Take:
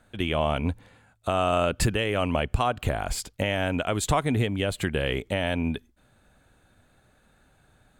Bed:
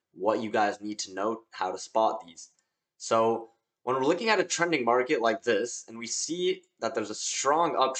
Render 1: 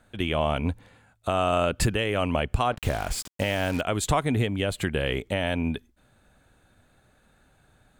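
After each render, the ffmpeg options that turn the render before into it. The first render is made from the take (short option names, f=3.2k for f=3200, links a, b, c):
-filter_complex "[0:a]asettb=1/sr,asplit=3[a][b][c];[a]atrim=end=2.724[d];[b]atrim=start=2.72:end=3.81,asetpts=PTS-STARTPTS,afade=t=in:d=0.004:c=qsin,afade=t=out:st=1.086:d=0.004:c=qsin,acrusher=bits=5:mix=0:aa=0.5[e];[c]atrim=start=3.806[f];[d][e]acrossfade=d=0.004:c1=hsin:c2=qsin[g];[g][f]acrossfade=d=0.004:c1=qsin:c2=hsin"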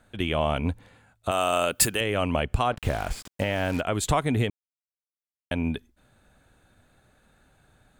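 -filter_complex "[0:a]asettb=1/sr,asplit=3[a][b][c];[a]atrim=end=1.314[d];[b]atrim=start=1.31:end=2.01,asetpts=PTS-STARTPTS,afade=t=in:d=0.004:c=qsin,afade=t=out:st=0.696:d=0.004:c=qsin,aemphasis=mode=production:type=bsi[e];[c]atrim=start=2.006[f];[d][e]acrossfade=d=0.004:c1=hsin:c2=qsin[g];[g][f]acrossfade=d=0.004:c1=qsin:c2=hsin,asettb=1/sr,asplit=3[h][i][j];[h]atrim=end=2.764[k];[i]atrim=start=2.76:end=4,asetpts=PTS-STARTPTS,afade=t=in:d=0.004:c=qsin,afade=t=out:st=1.236:d=0.004:c=qsin,acrossover=split=2900[l][m];[m]acompressor=threshold=-40dB:ratio=4:attack=1:release=60[n];[l][n]amix=inputs=2:normalize=0[o];[j]atrim=start=3.996[p];[k][o]acrossfade=d=0.004:c1=hsin:c2=qsin[q];[q][p]acrossfade=d=0.004:c1=qsin:c2=hsin,asplit=3[r][s][t];[r]atrim=end=4.5,asetpts=PTS-STARTPTS,afade=t=out:st=4.496:d=0.004:c=hsin[u];[s]atrim=start=4.5:end=5.51,asetpts=PTS-STARTPTS,volume=0[v];[t]atrim=start=5.51,asetpts=PTS-STARTPTS,afade=t=in:d=0.004:c=hsin[w];[u][v][w]concat=n=3:v=0:a=1"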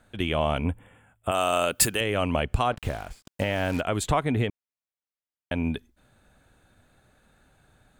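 -filter_complex "[0:a]asettb=1/sr,asplit=3[a][b][c];[a]atrim=end=0.644[d];[b]atrim=start=0.64:end=1.35,asetpts=PTS-STARTPTS,afade=t=in:d=0.004:c=qsin,afade=t=out:st=0.706:d=0.004:c=qsin,asuperstop=centerf=5000:order=20:qfactor=1.4[e];[c]atrim=start=1.346[f];[d][e]acrossfade=d=0.004:c1=hsin:c2=qsin[g];[g][f]acrossfade=d=0.004:c1=qsin:c2=hsin,asettb=1/sr,asplit=3[h][i][j];[h]atrim=end=4.034[k];[i]atrim=start=4.03:end=5.55,asetpts=PTS-STARTPTS,afade=t=in:d=0.004:c=qsin,afade=t=out:st=1.516:d=0.004:c=qsin,bass=f=250:g=-1,treble=f=4k:g=-8[l];[j]atrim=start=5.546[m];[k][l]acrossfade=d=0.004:c1=hsin:c2=qsin[n];[n][m]acrossfade=d=0.004:c1=qsin:c2=hsin,asplit=2[o][p];[o]atrim=end=3.27,asetpts=PTS-STARTPTS,afade=t=out:st=2.71:d=0.56[q];[p]atrim=start=3.27,asetpts=PTS-STARTPTS,afade=t=in:d=0.004:c=hsin[r];[q][r]concat=n=2:v=0:a=1"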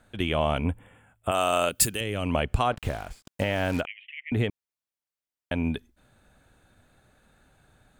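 -filter_complex "[0:a]asettb=1/sr,asplit=3[a][b][c];[a]atrim=end=1.694[d];[b]atrim=start=1.69:end=2.26,asetpts=PTS-STARTPTS,afade=t=in:d=0.004:c=qsin,afade=t=out:st=0.566:d=0.004:c=qsin,equalizer=f=1k:t=o:w=2.8:g=-8.5[e];[c]atrim=start=2.256[f];[d][e]acrossfade=d=0.004:c1=hsin:c2=qsin[g];[g][f]acrossfade=d=0.004:c1=qsin:c2=hsin,asettb=1/sr,asplit=3[h][i][j];[h]atrim=end=3.854[k];[i]atrim=start=3.85:end=4.32,asetpts=PTS-STARTPTS,afade=t=in:d=0.004:c=qsin,afade=t=out:st=0.466:d=0.004:c=qsin,asuperpass=centerf=2400:order=12:qfactor=2.1[l];[j]atrim=start=4.316[m];[k][l]acrossfade=d=0.004:c1=hsin:c2=qsin[n];[n][m]acrossfade=d=0.004:c1=qsin:c2=hsin"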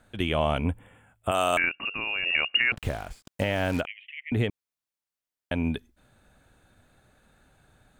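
-filter_complex "[0:a]asettb=1/sr,asplit=3[a][b][c];[a]atrim=end=1.574[d];[b]atrim=start=1.57:end=2.72,asetpts=PTS-STARTPTS,afade=t=in:d=0.004:c=qsin,afade=t=out:st=1.146:d=0.004:c=qsin,lowpass=f=2.5k:t=q:w=0.5098,lowpass=f=2.5k:t=q:w=0.6013,lowpass=f=2.5k:t=q:w=0.9,lowpass=f=2.5k:t=q:w=2.563,afreqshift=-2900[e];[c]atrim=start=2.716[f];[d][e]acrossfade=d=0.004:c1=hsin:c2=qsin[g];[g][f]acrossfade=d=0.004:c1=qsin:c2=hsin"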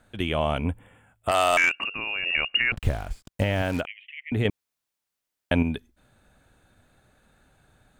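-filter_complex "[0:a]asettb=1/sr,asplit=3[a][b][c];[a]atrim=end=1.284[d];[b]atrim=start=1.28:end=1.84,asetpts=PTS-STARTPTS,afade=t=in:d=0.004:c=qsin,afade=t=out:st=0.556:d=0.004:c=qsin,asplit=2[e][f];[f]highpass=f=720:p=1,volume=13dB,asoftclip=type=tanh:threshold=-11.5dB[g];[e][g]amix=inputs=2:normalize=0,lowpass=f=7.2k:p=1,volume=-6dB[h];[c]atrim=start=1.836[i];[d][h]acrossfade=d=0.004:c1=hsin:c2=qsin[j];[j][i]acrossfade=d=0.004:c1=qsin:c2=hsin,asettb=1/sr,asplit=3[k][l][m];[k]atrim=end=2.374[n];[l]atrim=start=2.37:end=3.62,asetpts=PTS-STARTPTS,afade=t=in:d=0.004:c=qsin,afade=t=out:st=1.246:d=0.004:c=qsin,lowshelf=f=110:g=11.5[o];[m]atrim=start=3.616[p];[n][o]acrossfade=d=0.004:c1=hsin:c2=qsin[q];[q][p]acrossfade=d=0.004:c1=qsin:c2=hsin,asplit=3[r][s][t];[r]atrim=end=4.452[u];[s]atrim=start=4.448:end=5.632,asetpts=PTS-STARTPTS,volume=6.5dB[v];[t]atrim=start=5.628[w];[u][v]acrossfade=d=0.004:c1=hsin:c2=hsin[x];[x][w]acrossfade=d=0.004:c1=hsin:c2=hsin"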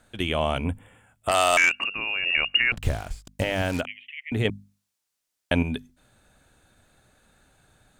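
-af "equalizer=f=7.1k:t=o:w=2:g=6,bandreject=f=50:t=h:w=6,bandreject=f=100:t=h:w=6,bandreject=f=150:t=h:w=6,bandreject=f=200:t=h:w=6,bandreject=f=250:t=h:w=6"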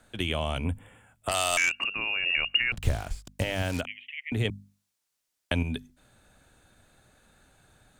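-filter_complex "[0:a]acrossover=split=130|3000[a][b][c];[b]acompressor=threshold=-31dB:ratio=2.5[d];[a][d][c]amix=inputs=3:normalize=0"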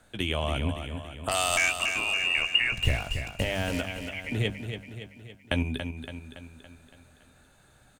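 -filter_complex "[0:a]asplit=2[a][b];[b]adelay=15,volume=-11dB[c];[a][c]amix=inputs=2:normalize=0,asplit=2[d][e];[e]aecho=0:1:282|564|846|1128|1410|1692:0.398|0.215|0.116|0.0627|0.0339|0.0183[f];[d][f]amix=inputs=2:normalize=0"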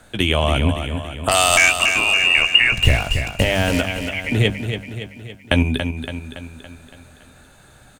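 -af "volume=11dB,alimiter=limit=-1dB:level=0:latency=1"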